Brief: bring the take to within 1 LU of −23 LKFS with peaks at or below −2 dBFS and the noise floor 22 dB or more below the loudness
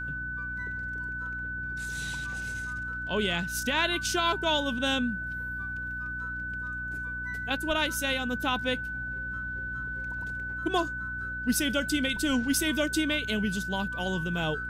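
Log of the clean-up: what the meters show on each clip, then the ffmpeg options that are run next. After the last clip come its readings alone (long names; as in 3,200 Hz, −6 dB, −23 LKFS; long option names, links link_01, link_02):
mains hum 60 Hz; hum harmonics up to 300 Hz; level of the hum −39 dBFS; interfering tone 1,500 Hz; level of the tone −33 dBFS; integrated loudness −30.0 LKFS; sample peak −14.0 dBFS; target loudness −23.0 LKFS
→ -af "bandreject=frequency=60:width_type=h:width=4,bandreject=frequency=120:width_type=h:width=4,bandreject=frequency=180:width_type=h:width=4,bandreject=frequency=240:width_type=h:width=4,bandreject=frequency=300:width_type=h:width=4"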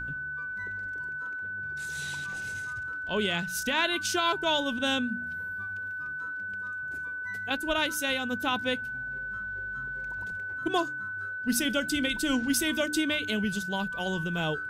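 mains hum none found; interfering tone 1,500 Hz; level of the tone −33 dBFS
→ -af "bandreject=frequency=1500:width=30"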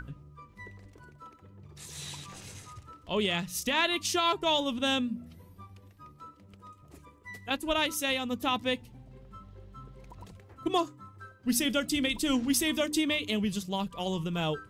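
interfering tone none found; integrated loudness −29.5 LKFS; sample peak −15.0 dBFS; target loudness −23.0 LKFS
→ -af "volume=6.5dB"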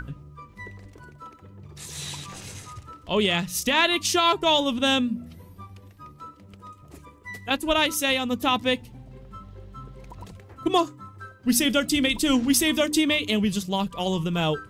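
integrated loudness −23.0 LKFS; sample peak −8.5 dBFS; background noise floor −51 dBFS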